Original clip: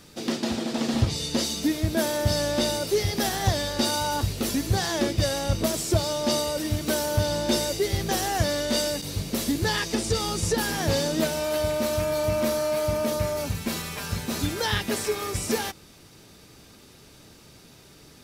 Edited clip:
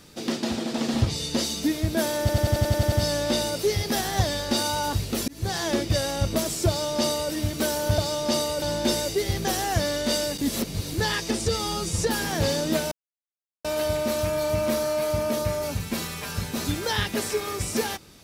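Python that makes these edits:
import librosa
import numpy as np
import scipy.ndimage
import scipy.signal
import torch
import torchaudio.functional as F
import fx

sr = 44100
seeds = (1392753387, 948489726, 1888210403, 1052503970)

y = fx.edit(x, sr, fx.stutter(start_s=2.2, slice_s=0.09, count=9),
    fx.fade_in_span(start_s=4.56, length_s=0.43, curve='qsin'),
    fx.duplicate(start_s=5.96, length_s=0.64, to_s=7.26),
    fx.reverse_span(start_s=9.05, length_s=0.51),
    fx.stretch_span(start_s=10.13, length_s=0.33, factor=1.5),
    fx.insert_silence(at_s=11.39, length_s=0.73), tone=tone)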